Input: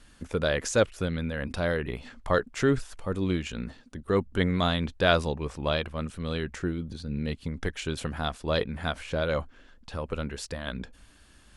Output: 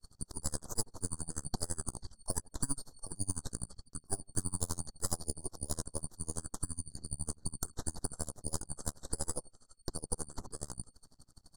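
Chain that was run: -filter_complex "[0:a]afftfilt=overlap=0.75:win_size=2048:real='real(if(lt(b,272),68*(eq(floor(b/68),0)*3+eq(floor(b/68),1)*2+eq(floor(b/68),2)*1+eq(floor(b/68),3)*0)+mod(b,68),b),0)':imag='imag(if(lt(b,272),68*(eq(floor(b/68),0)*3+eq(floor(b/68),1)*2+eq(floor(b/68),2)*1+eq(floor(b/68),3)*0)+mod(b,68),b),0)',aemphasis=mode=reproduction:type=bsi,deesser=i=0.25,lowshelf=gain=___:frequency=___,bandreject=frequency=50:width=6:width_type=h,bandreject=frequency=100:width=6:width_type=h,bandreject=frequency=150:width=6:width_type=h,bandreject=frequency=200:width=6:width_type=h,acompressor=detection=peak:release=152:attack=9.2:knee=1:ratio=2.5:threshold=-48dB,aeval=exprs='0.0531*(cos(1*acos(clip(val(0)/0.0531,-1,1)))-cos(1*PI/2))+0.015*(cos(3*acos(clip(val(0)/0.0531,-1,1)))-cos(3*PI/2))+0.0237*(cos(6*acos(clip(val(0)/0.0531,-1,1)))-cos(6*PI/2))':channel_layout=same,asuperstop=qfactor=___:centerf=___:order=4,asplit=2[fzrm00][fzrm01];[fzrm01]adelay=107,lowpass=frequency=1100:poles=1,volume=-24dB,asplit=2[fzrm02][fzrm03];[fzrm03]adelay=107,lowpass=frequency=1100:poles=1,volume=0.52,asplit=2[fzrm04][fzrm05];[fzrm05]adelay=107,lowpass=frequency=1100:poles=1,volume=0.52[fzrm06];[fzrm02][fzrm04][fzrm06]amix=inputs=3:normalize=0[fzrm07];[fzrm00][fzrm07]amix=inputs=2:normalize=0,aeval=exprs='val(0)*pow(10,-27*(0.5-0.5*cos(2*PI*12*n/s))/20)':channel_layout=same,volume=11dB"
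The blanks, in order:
8.5, 220, 0.57, 2500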